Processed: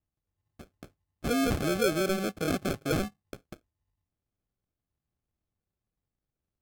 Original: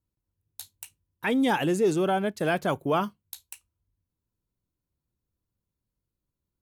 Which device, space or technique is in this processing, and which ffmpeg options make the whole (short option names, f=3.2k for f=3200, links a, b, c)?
crushed at another speed: -af "asetrate=55125,aresample=44100,acrusher=samples=37:mix=1:aa=0.000001,asetrate=35280,aresample=44100,volume=-3.5dB"